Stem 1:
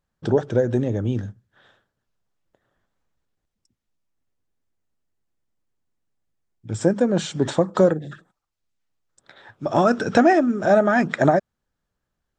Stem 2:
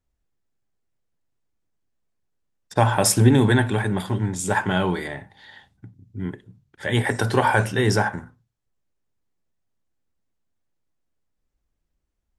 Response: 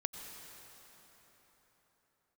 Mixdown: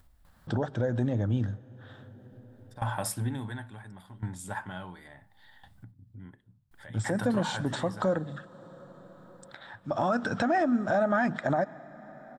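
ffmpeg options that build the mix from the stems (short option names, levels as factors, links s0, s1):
-filter_complex "[0:a]alimiter=limit=0.376:level=0:latency=1:release=153,adelay=250,volume=0.794,asplit=3[s0][s1][s2];[s0]atrim=end=5.92,asetpts=PTS-STARTPTS,afade=t=out:st=5.916:d=0.004:c=hsin[s3];[s1]atrim=start=5.92:end=6.71,asetpts=PTS-STARTPTS,volume=0[s4];[s2]atrim=start=6.71,asetpts=PTS-STARTPTS,afade=t=in:d=0.004:c=hsin[s5];[s3][s4][s5]concat=n=3:v=0:a=1,asplit=2[s6][s7];[s7]volume=0.158[s8];[1:a]aeval=exprs='val(0)*pow(10,-20*if(lt(mod(0.71*n/s,1),2*abs(0.71)/1000),1-mod(0.71*n/s,1)/(2*abs(0.71)/1000),(mod(0.71*n/s,1)-2*abs(0.71)/1000)/(1-2*abs(0.71)/1000))/20)':c=same,volume=0.422[s9];[2:a]atrim=start_sample=2205[s10];[s8][s10]afir=irnorm=-1:irlink=0[s11];[s6][s9][s11]amix=inputs=3:normalize=0,equalizer=f=160:t=o:w=0.67:g=-4,equalizer=f=400:t=o:w=0.67:g=-12,equalizer=f=2500:t=o:w=0.67:g=-6,equalizer=f=6300:t=o:w=0.67:g=-9,acompressor=mode=upward:threshold=0.01:ratio=2.5,alimiter=limit=0.133:level=0:latency=1:release=71"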